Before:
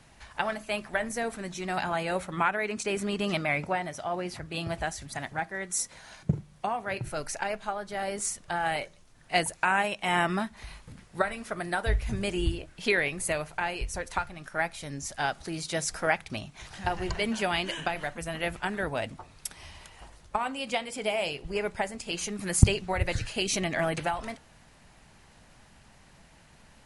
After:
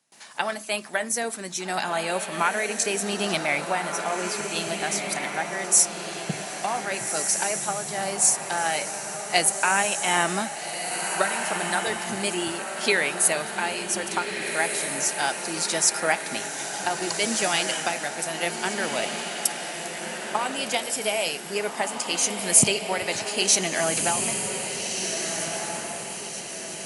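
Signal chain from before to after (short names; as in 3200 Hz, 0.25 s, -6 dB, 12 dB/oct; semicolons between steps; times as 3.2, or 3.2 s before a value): gate with hold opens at -45 dBFS; HPF 170 Hz 24 dB/oct; tone controls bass -3 dB, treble +11 dB; on a send: diffused feedback echo 1.638 s, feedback 47%, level -5 dB; on the sum: gain +2.5 dB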